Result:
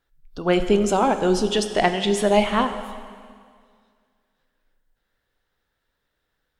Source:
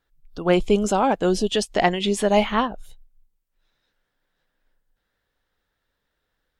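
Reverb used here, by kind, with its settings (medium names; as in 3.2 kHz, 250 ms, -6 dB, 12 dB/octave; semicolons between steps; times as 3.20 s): plate-style reverb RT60 2 s, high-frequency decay 0.95×, DRR 8 dB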